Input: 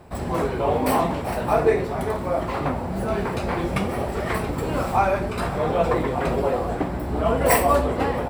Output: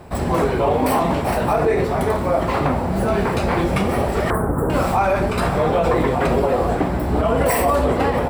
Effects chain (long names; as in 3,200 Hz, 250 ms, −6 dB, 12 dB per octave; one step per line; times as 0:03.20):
0:04.30–0:04.70: elliptic band-stop filter 1,500–9,000 Hz, stop band 40 dB
convolution reverb RT60 1.9 s, pre-delay 3 ms, DRR 18.5 dB
boost into a limiter +14.5 dB
level −8 dB